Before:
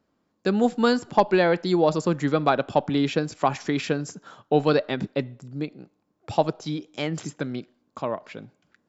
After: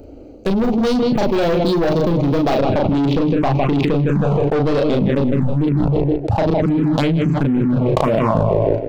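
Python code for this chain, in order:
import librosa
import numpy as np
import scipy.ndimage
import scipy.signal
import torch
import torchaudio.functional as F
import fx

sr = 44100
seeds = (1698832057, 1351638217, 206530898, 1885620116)

y = fx.wiener(x, sr, points=25)
y = fx.leveller(y, sr, passes=2)
y = fx.high_shelf(y, sr, hz=6800.0, db=fx.steps((0.0, 6.0), (2.55, -7.0)))
y = fx.doubler(y, sr, ms=36.0, db=-4.5)
y = fx.echo_filtered(y, sr, ms=158, feedback_pct=32, hz=3600.0, wet_db=-12.0)
y = fx.env_phaser(y, sr, low_hz=180.0, high_hz=1600.0, full_db=-14.5)
y = 10.0 ** (-16.0 / 20.0) * np.tanh(y / 10.0 ** (-16.0 / 20.0))
y = fx.low_shelf(y, sr, hz=60.0, db=11.0)
y = fx.env_flatten(y, sr, amount_pct=100)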